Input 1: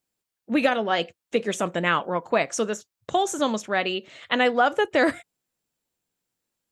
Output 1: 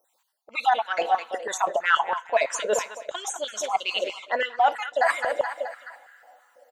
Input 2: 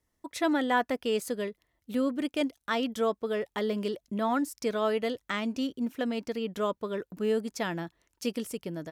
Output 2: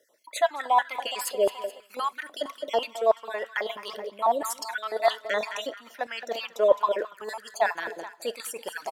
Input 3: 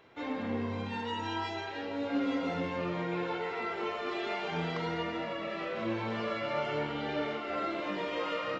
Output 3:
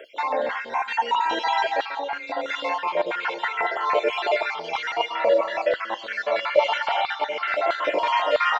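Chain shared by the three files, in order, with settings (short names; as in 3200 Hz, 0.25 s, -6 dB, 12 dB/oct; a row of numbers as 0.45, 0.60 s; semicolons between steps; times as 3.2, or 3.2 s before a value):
random spectral dropouts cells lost 47%; notch 1200 Hz, Q 12; feedback echo 0.213 s, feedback 51%, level -17 dB; in parallel at -9 dB: soft clip -20 dBFS; on the sum: two-slope reverb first 0.26 s, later 3.5 s, from -21 dB, DRR 18 dB; reverse; compressor 6:1, threshold -36 dBFS; reverse; dynamic EQ 1300 Hz, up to -4 dB, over -59 dBFS, Q 4.4; stepped high-pass 6.1 Hz 540–1500 Hz; normalise peaks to -6 dBFS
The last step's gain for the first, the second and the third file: +11.0, +11.0, +13.5 dB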